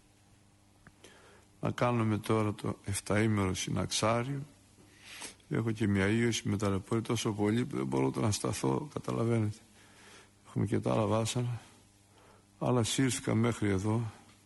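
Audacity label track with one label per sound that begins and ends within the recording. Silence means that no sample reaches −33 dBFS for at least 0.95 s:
1.630000	9.500000	sound
10.560000	11.550000	sound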